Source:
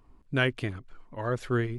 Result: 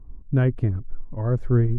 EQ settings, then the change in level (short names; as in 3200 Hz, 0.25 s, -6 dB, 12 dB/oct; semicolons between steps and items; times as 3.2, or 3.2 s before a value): RIAA curve playback; bell 3200 Hz -13 dB 1.9 oct; 0.0 dB